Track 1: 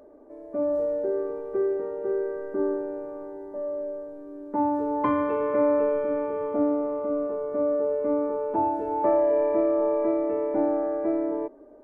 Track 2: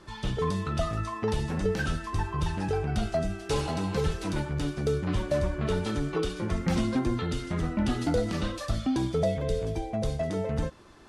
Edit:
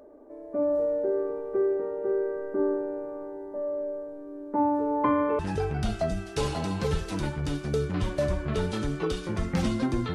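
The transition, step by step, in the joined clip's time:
track 1
0:05.39: continue with track 2 from 0:02.52

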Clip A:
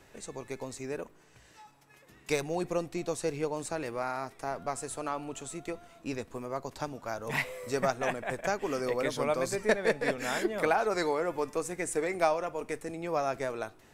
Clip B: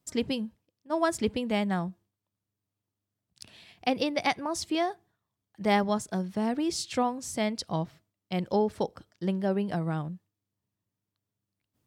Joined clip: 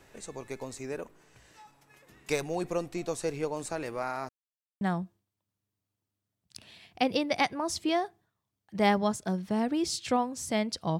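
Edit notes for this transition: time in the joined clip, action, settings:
clip A
0:04.29–0:04.81: silence
0:04.81: continue with clip B from 0:01.67

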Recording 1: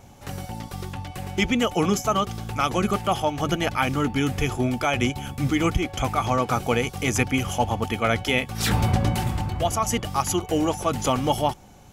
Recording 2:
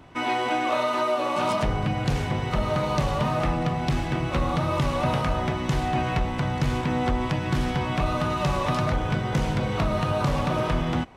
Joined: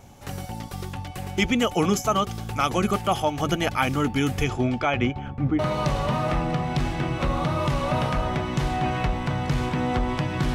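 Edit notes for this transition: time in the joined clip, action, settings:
recording 1
0:04.43–0:05.59: low-pass filter 7,100 Hz → 1,000 Hz
0:05.59: continue with recording 2 from 0:02.71

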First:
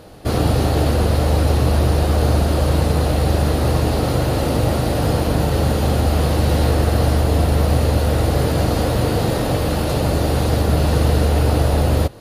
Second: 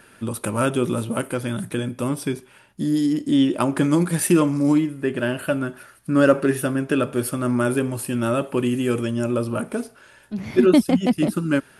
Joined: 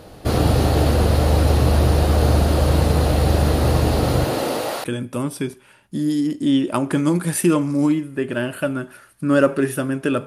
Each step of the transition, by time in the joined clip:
first
0:04.24–0:04.84: high-pass filter 160 Hz → 800 Hz
0:04.84: continue with second from 0:01.70

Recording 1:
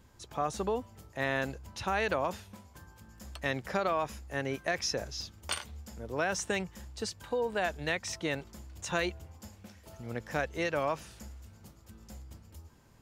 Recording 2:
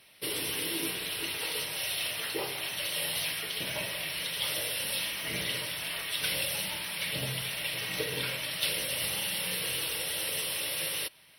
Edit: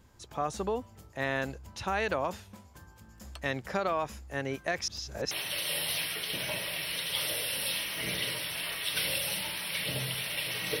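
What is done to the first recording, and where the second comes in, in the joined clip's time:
recording 1
0:04.88–0:05.31: reverse
0:05.31: continue with recording 2 from 0:02.58

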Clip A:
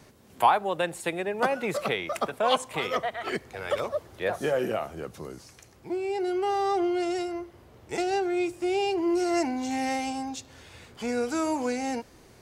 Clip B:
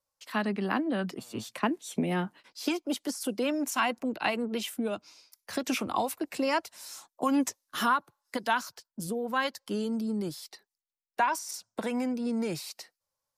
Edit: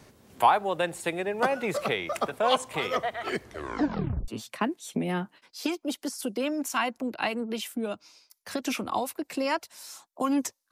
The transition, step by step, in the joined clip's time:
clip A
0:03.42: tape stop 0.86 s
0:04.28: continue with clip B from 0:01.30

